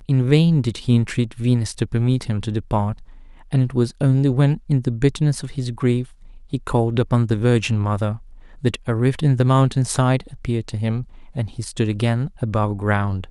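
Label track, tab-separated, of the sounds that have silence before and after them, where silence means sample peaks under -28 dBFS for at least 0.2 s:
3.530000	6.040000	sound
6.530000	8.170000	sound
8.640000	11.030000	sound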